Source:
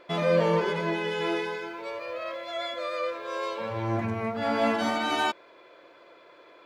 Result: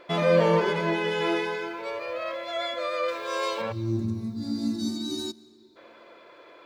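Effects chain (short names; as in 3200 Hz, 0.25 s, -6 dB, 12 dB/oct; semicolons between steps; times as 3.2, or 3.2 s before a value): 3.08–3.62 high shelf 4000 Hz +10.5 dB; 3.72–5.77 spectral gain 420–3500 Hz -28 dB; reverb RT60 2.3 s, pre-delay 0.11 s, DRR 20.5 dB; gain +2.5 dB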